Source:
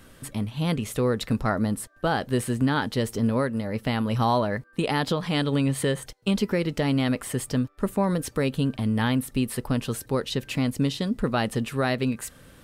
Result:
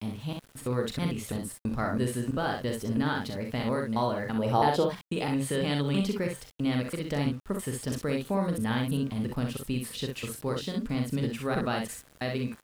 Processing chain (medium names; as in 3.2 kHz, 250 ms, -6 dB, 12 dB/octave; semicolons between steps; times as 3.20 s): slices played last to first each 330 ms, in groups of 2; time-frequency box 4.37–4.85 s, 320–990 Hz +8 dB; on a send: early reflections 41 ms -6.5 dB, 63 ms -5 dB; on the sum: small samples zeroed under -43 dBFS; trim -6.5 dB